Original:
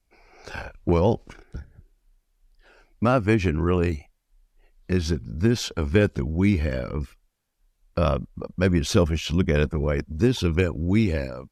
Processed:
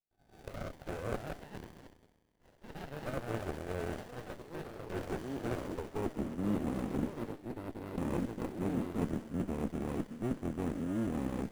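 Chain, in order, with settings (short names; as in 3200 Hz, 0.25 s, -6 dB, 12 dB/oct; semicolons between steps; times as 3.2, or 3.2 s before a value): octaver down 1 oct, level 0 dB; recorder AGC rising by 5 dB/s; bell 4100 Hz -13.5 dB 0.93 oct; gate -51 dBFS, range -20 dB; sample-and-hold 29×; high-pass sweep 650 Hz -> 250 Hz, 5.51–6.26; envelope phaser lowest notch 490 Hz, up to 4400 Hz, full sweep at -25.5 dBFS; reverse; compressor 12:1, threshold -34 dBFS, peak gain reduction 24.5 dB; reverse; low shelf 320 Hz +8 dB; on a send: thin delay 65 ms, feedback 75%, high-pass 2600 Hz, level -3.5 dB; on the sum: echoes that change speed 0.461 s, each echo +5 st, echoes 3, each echo -6 dB; running maximum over 33 samples; gain -1.5 dB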